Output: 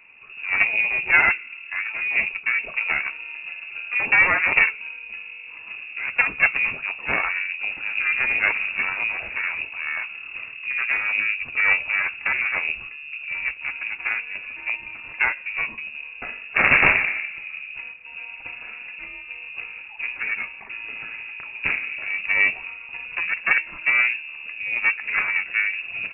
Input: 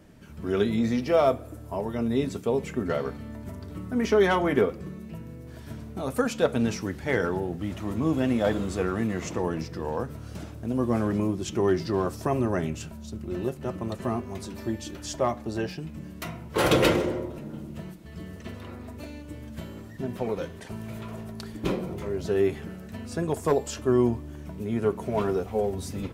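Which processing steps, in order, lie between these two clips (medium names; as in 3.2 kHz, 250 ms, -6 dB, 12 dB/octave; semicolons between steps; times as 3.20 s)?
Chebyshev shaper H 4 -7 dB, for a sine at -8.5 dBFS; frequency inversion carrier 2.7 kHz; trim +2.5 dB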